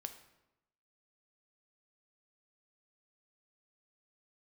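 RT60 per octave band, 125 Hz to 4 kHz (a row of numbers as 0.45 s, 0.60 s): 1.0 s, 1.0 s, 0.95 s, 0.90 s, 0.80 s, 0.65 s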